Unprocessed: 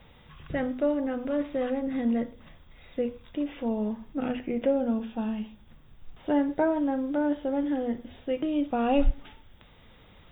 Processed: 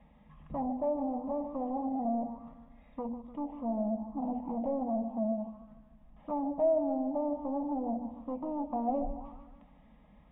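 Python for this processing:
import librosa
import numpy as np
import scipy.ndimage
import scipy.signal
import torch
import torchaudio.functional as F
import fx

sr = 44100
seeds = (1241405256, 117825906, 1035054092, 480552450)

y = scipy.signal.sosfilt(scipy.signal.butter(2, 45.0, 'highpass', fs=sr, output='sos'), x)
y = fx.low_shelf(y, sr, hz=330.0, db=10.5)
y = fx.hum_notches(y, sr, base_hz=60, count=4)
y = y + 0.33 * np.pad(y, (int(4.8 * sr / 1000.0), 0))[:len(y)]
y = np.clip(10.0 ** (24.0 / 20.0) * y, -1.0, 1.0) / 10.0 ** (24.0 / 20.0)
y = fx.fixed_phaser(y, sr, hz=400.0, stages=6)
y = 10.0 ** (-18.0 / 20.0) * np.tanh(y / 10.0 ** (-18.0 / 20.0))
y = fx.echo_feedback(y, sr, ms=149, feedback_pct=54, wet_db=-11)
y = fx.envelope_lowpass(y, sr, base_hz=410.0, top_hz=1700.0, q=4.0, full_db=-20.0, direction='down')
y = y * librosa.db_to_amplitude(-8.0)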